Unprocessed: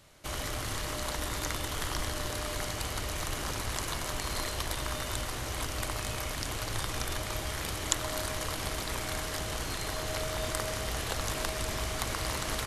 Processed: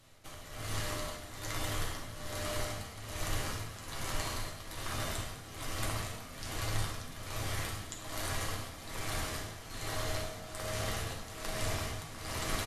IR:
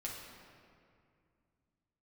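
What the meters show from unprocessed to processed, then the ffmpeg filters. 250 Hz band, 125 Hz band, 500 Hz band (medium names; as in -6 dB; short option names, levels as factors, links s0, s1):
-4.0 dB, -2.0 dB, -4.5 dB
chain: -filter_complex "[0:a]tremolo=f=1.2:d=0.79,asplit=8[s0][s1][s2][s3][s4][s5][s6][s7];[s1]adelay=102,afreqshift=48,volume=0.251[s8];[s2]adelay=204,afreqshift=96,volume=0.148[s9];[s3]adelay=306,afreqshift=144,volume=0.0871[s10];[s4]adelay=408,afreqshift=192,volume=0.0519[s11];[s5]adelay=510,afreqshift=240,volume=0.0305[s12];[s6]adelay=612,afreqshift=288,volume=0.018[s13];[s7]adelay=714,afreqshift=336,volume=0.0106[s14];[s0][s8][s9][s10][s11][s12][s13][s14]amix=inputs=8:normalize=0[s15];[1:a]atrim=start_sample=2205,atrim=end_sample=3528,asetrate=40572,aresample=44100[s16];[s15][s16]afir=irnorm=-1:irlink=0"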